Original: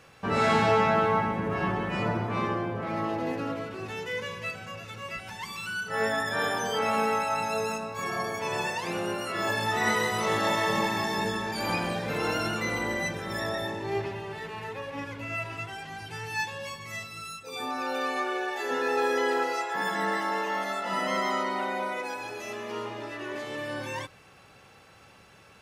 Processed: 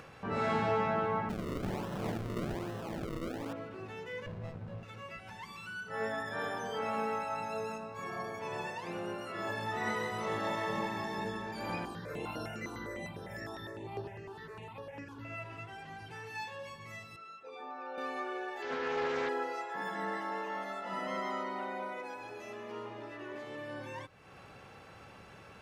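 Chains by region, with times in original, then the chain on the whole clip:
1.29–3.53 s: steep low-pass 7.8 kHz + decimation with a swept rate 37× 1.2 Hz
4.26–4.83 s: tilt EQ -3.5 dB/octave + sliding maximum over 33 samples
11.85–15.25 s: treble shelf 6.9 kHz +7 dB + stepped phaser 9.9 Hz 560–7300 Hz
16.12–16.63 s: bass shelf 120 Hz -11.5 dB + doubling 29 ms -4 dB
17.16–17.98 s: high-pass 420 Hz + tape spacing loss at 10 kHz 26 dB
18.62–19.29 s: steep low-pass 6 kHz 48 dB/octave + treble shelf 2.5 kHz +7.5 dB + loudspeaker Doppler distortion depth 0.2 ms
whole clip: upward compressor, threshold -33 dBFS; treble shelf 3.1 kHz -9.5 dB; trim -7.5 dB

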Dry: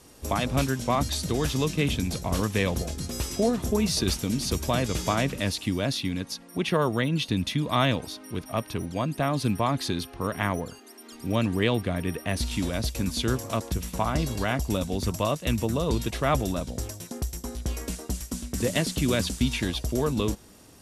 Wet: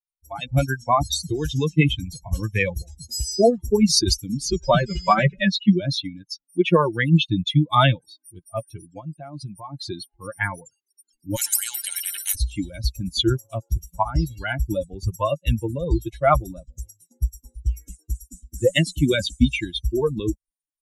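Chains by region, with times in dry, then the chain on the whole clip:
4.48–5.80 s: distance through air 76 m + comb 5.2 ms, depth 96%
8.99–9.88 s: treble shelf 12 kHz -4 dB + compression 2.5:1, threshold -28 dBFS
11.36–12.35 s: high-pass 72 Hz 24 dB/octave + spectrum-flattening compressor 10:1
whole clip: expander on every frequency bin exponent 3; comb 5.8 ms, depth 31%; level rider gain up to 14 dB

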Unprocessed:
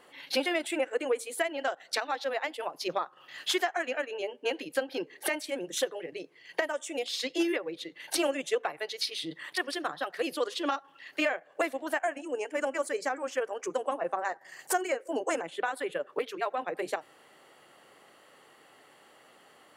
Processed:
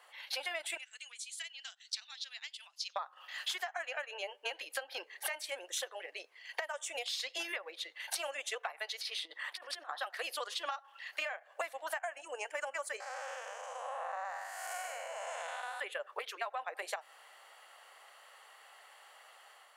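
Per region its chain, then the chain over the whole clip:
0.77–2.96 s: Butterworth band-pass 5.1 kHz, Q 1.1 + tape noise reduction on one side only encoder only
8.99–9.98 s: treble shelf 2.6 kHz -8.5 dB + compressor with a negative ratio -39 dBFS, ratio -0.5
13.00–15.80 s: spectral blur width 338 ms + brick-wall FIR high-pass 460 Hz
whole clip: level rider gain up to 3.5 dB; high-pass 670 Hz 24 dB/octave; compression 6:1, threshold -33 dBFS; trim -2 dB

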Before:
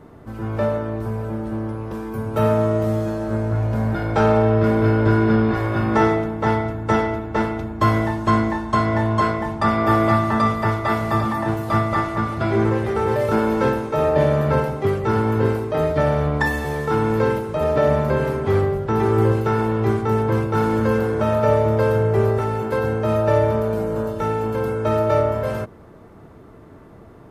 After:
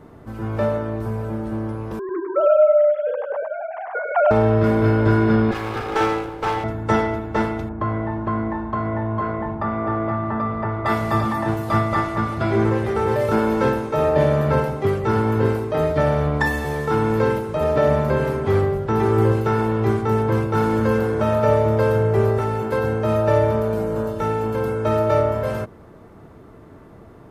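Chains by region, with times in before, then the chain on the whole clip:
1.99–4.31 s: formants replaced by sine waves + low-pass 1.8 kHz 6 dB/octave + delay 101 ms -4.5 dB
5.51–6.64 s: comb filter that takes the minimum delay 2.4 ms + bass shelf 350 Hz -6 dB + band-stop 1.9 kHz, Q 10
7.69–10.86 s: low-pass 1.6 kHz + compression 2.5:1, threshold -21 dBFS
whole clip: none

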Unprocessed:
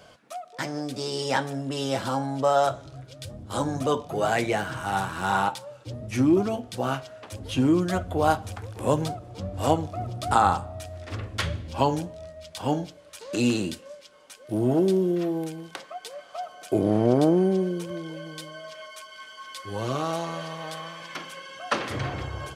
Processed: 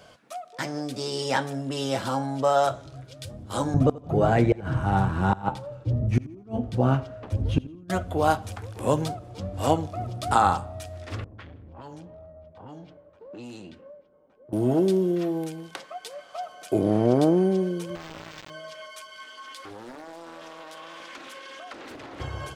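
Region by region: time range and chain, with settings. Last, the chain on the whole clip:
3.74–7.90 s: tilt EQ -4 dB/octave + inverted gate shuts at -9 dBFS, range -31 dB + feedback delay 84 ms, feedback 33%, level -20 dB
11.24–14.53 s: level-controlled noise filter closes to 440 Hz, open at -18.5 dBFS + compression 3:1, threshold -42 dBFS + transformer saturation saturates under 540 Hz
17.95–18.50 s: compression 4:1, threshold -37 dBFS + word length cut 6-bit, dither none + decimation joined by straight lines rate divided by 4×
19.24–22.20 s: resonant low shelf 200 Hz -9 dB, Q 3 + compression 12:1, threshold -37 dBFS + loudspeaker Doppler distortion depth 0.65 ms
whole clip: none

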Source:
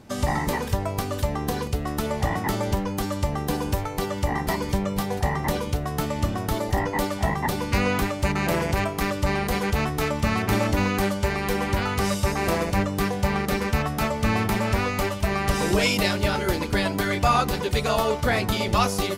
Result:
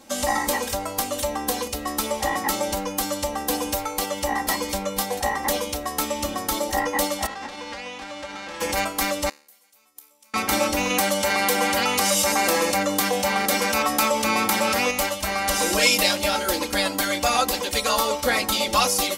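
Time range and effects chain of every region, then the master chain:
7.25–8.60 s: formants flattened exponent 0.3 + compression, threshold -25 dBFS + tape spacing loss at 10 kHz 35 dB
9.29–10.34 s: inverted gate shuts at -17 dBFS, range -33 dB + RIAA curve recording + feedback comb 73 Hz, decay 0.51 s, mix 70%
10.90–14.91 s: high-pass 110 Hz + level flattener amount 70%
whole clip: tone controls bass -13 dB, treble +8 dB; comb 3.7 ms, depth 87%

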